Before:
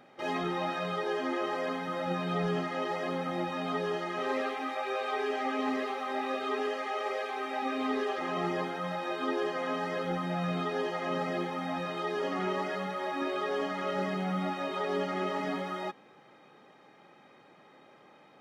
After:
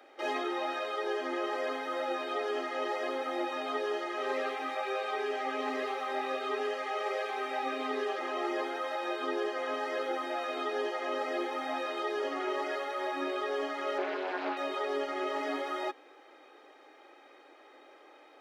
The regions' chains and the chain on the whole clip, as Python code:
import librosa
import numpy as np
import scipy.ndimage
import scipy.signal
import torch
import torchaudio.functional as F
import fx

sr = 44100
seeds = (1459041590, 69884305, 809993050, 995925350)

y = fx.chain(x, sr, fx.lowpass(hz=3400.0, slope=12),
    fx.doppler_dist(depth_ms=0.37), at=(13.98, 14.57))
y = scipy.signal.sosfilt(scipy.signal.butter(12, 280.0, 'highpass', fs=sr, output='sos'), y)
y = fx.peak_eq(y, sr, hz=1000.0, db=-4.5, octaves=0.23)
y = fx.rider(y, sr, range_db=10, speed_s=0.5)